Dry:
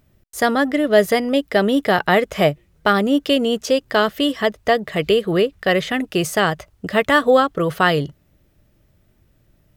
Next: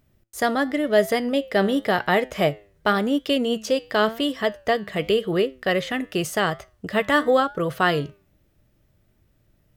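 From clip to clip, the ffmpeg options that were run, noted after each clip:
ffmpeg -i in.wav -af "flanger=delay=7.4:depth=3:regen=86:speed=0.91:shape=triangular" out.wav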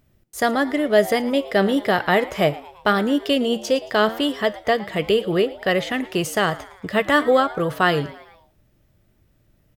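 ffmpeg -i in.wav -filter_complex "[0:a]asplit=5[link_01][link_02][link_03][link_04][link_05];[link_02]adelay=112,afreqshift=120,volume=-19.5dB[link_06];[link_03]adelay=224,afreqshift=240,volume=-25.2dB[link_07];[link_04]adelay=336,afreqshift=360,volume=-30.9dB[link_08];[link_05]adelay=448,afreqshift=480,volume=-36.5dB[link_09];[link_01][link_06][link_07][link_08][link_09]amix=inputs=5:normalize=0,volume=2dB" out.wav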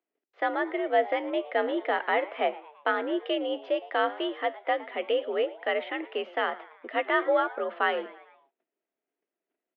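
ffmpeg -i in.wav -af "agate=range=-13dB:threshold=-56dB:ratio=16:detection=peak,highpass=frequency=260:width_type=q:width=0.5412,highpass=frequency=260:width_type=q:width=1.307,lowpass=frequency=3000:width_type=q:width=0.5176,lowpass=frequency=3000:width_type=q:width=0.7071,lowpass=frequency=3000:width_type=q:width=1.932,afreqshift=61,volume=-7.5dB" out.wav

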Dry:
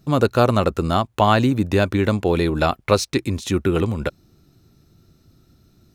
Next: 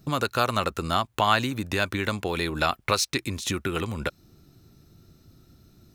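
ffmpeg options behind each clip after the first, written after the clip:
ffmpeg -i in.wav -filter_complex "[0:a]highshelf=frequency=12000:gain=4.5,acrossover=split=1000[link_01][link_02];[link_01]acompressor=threshold=-28dB:ratio=5[link_03];[link_03][link_02]amix=inputs=2:normalize=0" out.wav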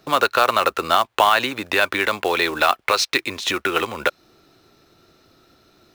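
ffmpeg -i in.wav -filter_complex "[0:a]acrossover=split=380 4600:gain=0.0891 1 0.178[link_01][link_02][link_03];[link_01][link_02][link_03]amix=inputs=3:normalize=0,acrusher=bits=4:mode=log:mix=0:aa=0.000001,alimiter=level_in=14dB:limit=-1dB:release=50:level=0:latency=1,volume=-3dB" out.wav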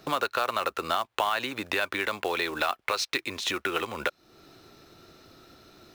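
ffmpeg -i in.wav -af "acompressor=threshold=-36dB:ratio=2,volume=2dB" out.wav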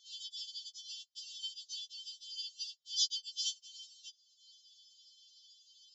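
ffmpeg -i in.wav -af "asuperpass=centerf=5100:order=20:qfactor=1.7,aeval=exprs='val(0)*sin(2*PI*750*n/s)':channel_layout=same,afftfilt=real='re*4*eq(mod(b,16),0)':imag='im*4*eq(mod(b,16),0)':win_size=2048:overlap=0.75,volume=5dB" out.wav

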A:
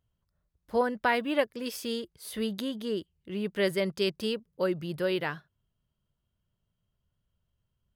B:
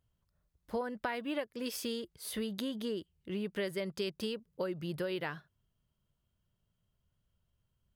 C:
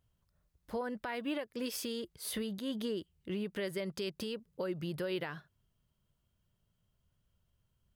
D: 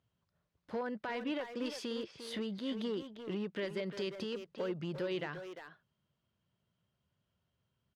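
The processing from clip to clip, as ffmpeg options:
ffmpeg -i in.wav -af "acompressor=threshold=-33dB:ratio=6" out.wav
ffmpeg -i in.wav -af "alimiter=level_in=6dB:limit=-24dB:level=0:latency=1:release=121,volume=-6dB,volume=2dB" out.wav
ffmpeg -i in.wav -filter_complex "[0:a]volume=31.5dB,asoftclip=hard,volume=-31.5dB,highpass=120,lowpass=4700,asplit=2[link_01][link_02];[link_02]adelay=350,highpass=300,lowpass=3400,asoftclip=type=hard:threshold=-37.5dB,volume=-6dB[link_03];[link_01][link_03]amix=inputs=2:normalize=0" out.wav

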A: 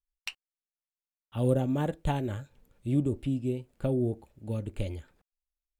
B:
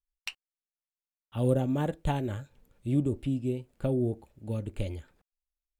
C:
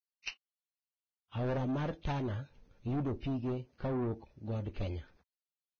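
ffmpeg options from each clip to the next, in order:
ffmpeg -i in.wav -af anull out.wav
ffmpeg -i in.wav -af "asoftclip=type=tanh:threshold=-30.5dB" -ar 16000 -c:a libvorbis -b:a 16k out.ogg

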